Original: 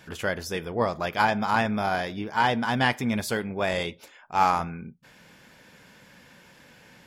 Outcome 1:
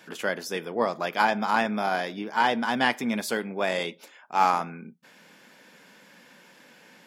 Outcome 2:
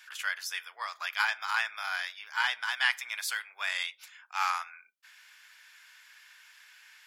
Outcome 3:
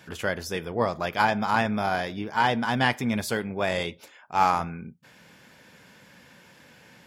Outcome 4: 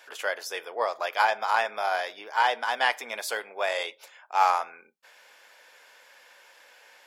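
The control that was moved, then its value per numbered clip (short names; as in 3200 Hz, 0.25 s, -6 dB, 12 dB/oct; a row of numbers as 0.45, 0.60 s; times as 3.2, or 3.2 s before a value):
HPF, cutoff: 190, 1300, 60, 520 Hz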